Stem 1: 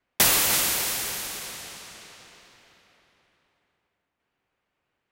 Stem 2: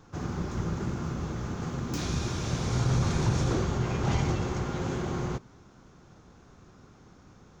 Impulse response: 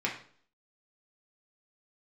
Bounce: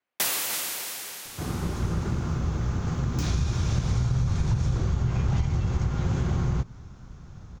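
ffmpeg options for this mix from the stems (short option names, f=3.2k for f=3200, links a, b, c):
-filter_complex "[0:a]highpass=f=300:p=1,volume=-7dB[a];[1:a]asubboost=boost=5.5:cutoff=140,acompressor=threshold=-23dB:ratio=10,adelay=1250,volume=2.5dB[b];[a][b]amix=inputs=2:normalize=0"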